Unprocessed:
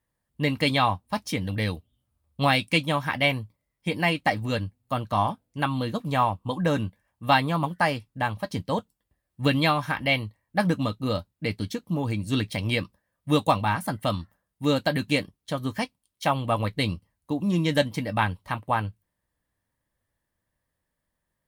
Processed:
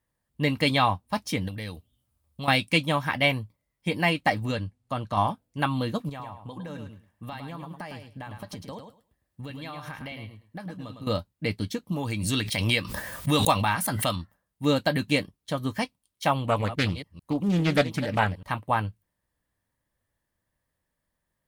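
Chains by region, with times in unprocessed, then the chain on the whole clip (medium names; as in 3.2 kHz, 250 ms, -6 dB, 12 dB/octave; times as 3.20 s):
1.48–2.48 s: treble shelf 4.2 kHz +6 dB + compression 2.5:1, threshold -36 dBFS
4.51–5.17 s: low-pass 10 kHz + compression 1.5:1, threshold -29 dBFS
6.09–11.07 s: high-pass 45 Hz + compression 10:1, threshold -35 dBFS + feedback delay 106 ms, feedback 17%, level -7 dB
11.92–14.16 s: tilt shelf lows -4 dB, about 1.2 kHz + swell ahead of each attack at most 33 dB/s
16.47–18.43 s: chunks repeated in reverse 145 ms, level -13 dB + loudspeaker Doppler distortion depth 0.38 ms
whole clip: none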